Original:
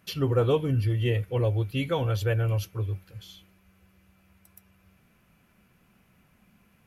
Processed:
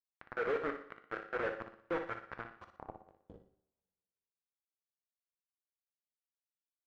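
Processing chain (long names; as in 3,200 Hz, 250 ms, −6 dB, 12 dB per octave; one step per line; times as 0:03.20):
dynamic equaliser 2,200 Hz, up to −4 dB, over −50 dBFS, Q 1.2
reversed playback
downward compressor 6 to 1, threshold −37 dBFS, peak gain reduction 17.5 dB
reversed playback
volume swells 159 ms
brickwall limiter −36 dBFS, peak gain reduction 8.5 dB
amplitude tremolo 4.2 Hz, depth 69%
high-pass filter sweep 420 Hz → 150 Hz, 0:01.32–0:03.82
bit reduction 7 bits
low-pass filter sweep 1,600 Hz → 170 Hz, 0:02.36–0:04.14
flutter between parallel walls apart 10.2 metres, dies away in 0.44 s
coupled-rooms reverb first 0.53 s, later 1.9 s, from −24 dB, DRR 9 dB
level +4.5 dB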